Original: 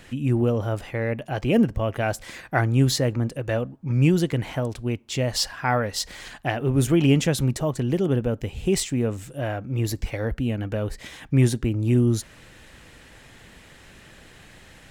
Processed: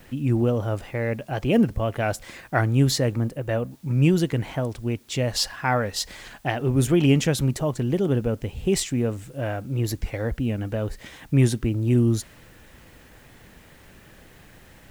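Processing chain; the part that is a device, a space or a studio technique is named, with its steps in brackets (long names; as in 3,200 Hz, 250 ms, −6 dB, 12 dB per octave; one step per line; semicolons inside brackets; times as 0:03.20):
plain cassette with noise reduction switched in (one half of a high-frequency compander decoder only; tape wow and flutter; white noise bed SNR 36 dB)
0:03.28–0:03.71: parametric band 4,700 Hz −4.5 dB 1.7 octaves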